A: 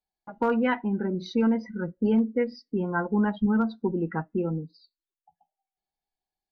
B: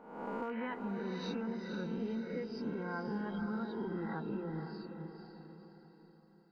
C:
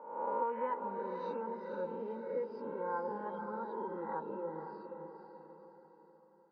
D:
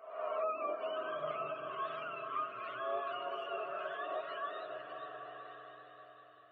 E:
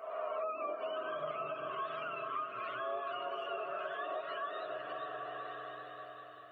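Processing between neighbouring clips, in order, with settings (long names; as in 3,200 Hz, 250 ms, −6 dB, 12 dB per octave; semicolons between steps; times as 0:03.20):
peak hold with a rise ahead of every peak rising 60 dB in 0.82 s; downward compressor 6 to 1, threshold −31 dBFS, peak gain reduction 12 dB; on a send: feedback delay with all-pass diffusion 492 ms, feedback 46%, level −6 dB; on the sum: level −6 dB
pair of resonant band-passes 710 Hz, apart 0.71 octaves; level +11 dB
frequency axis turned over on the octave scale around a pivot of 770 Hz; low-shelf EQ 110 Hz −11 dB; on a send: echo whose low-pass opens from repeat to repeat 195 ms, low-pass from 200 Hz, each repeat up 1 octave, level 0 dB; on the sum: level +1.5 dB
downward compressor 2.5 to 1, threshold −47 dBFS, peak gain reduction 10 dB; level +7.5 dB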